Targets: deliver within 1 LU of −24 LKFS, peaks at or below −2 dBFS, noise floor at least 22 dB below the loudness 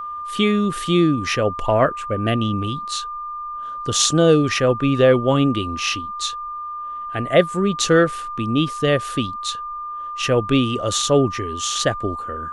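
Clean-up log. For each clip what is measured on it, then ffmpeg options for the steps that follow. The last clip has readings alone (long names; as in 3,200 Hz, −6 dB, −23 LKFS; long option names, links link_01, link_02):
interfering tone 1,200 Hz; level of the tone −27 dBFS; integrated loudness −20.0 LKFS; sample peak −1.0 dBFS; target loudness −24.0 LKFS
→ -af "bandreject=frequency=1200:width=30"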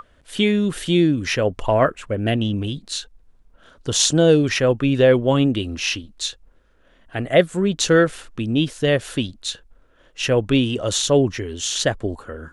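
interfering tone none found; integrated loudness −20.0 LKFS; sample peak −1.5 dBFS; target loudness −24.0 LKFS
→ -af "volume=-4dB"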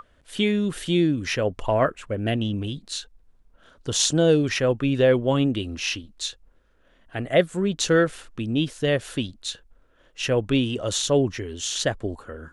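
integrated loudness −24.0 LKFS; sample peak −5.5 dBFS; background noise floor −60 dBFS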